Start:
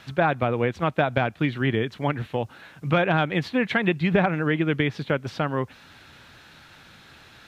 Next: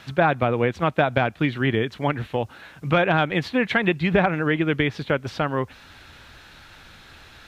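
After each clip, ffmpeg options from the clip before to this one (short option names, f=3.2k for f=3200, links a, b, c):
-af "asubboost=boost=4.5:cutoff=63,volume=2.5dB"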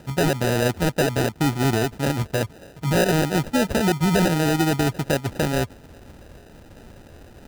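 -af "equalizer=f=2.1k:w=0.57:g=-8.5,acrusher=samples=40:mix=1:aa=0.000001,alimiter=limit=-18.5dB:level=0:latency=1:release=17,volume=5.5dB"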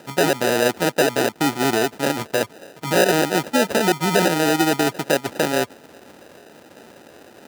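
-af "highpass=290,volume=4.5dB"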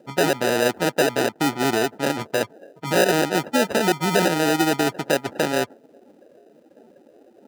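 -af "afftdn=nr=18:nf=-38,volume=-1.5dB"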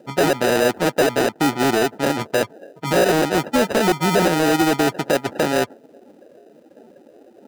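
-af "asoftclip=type=hard:threshold=-12.5dB,volume=4dB"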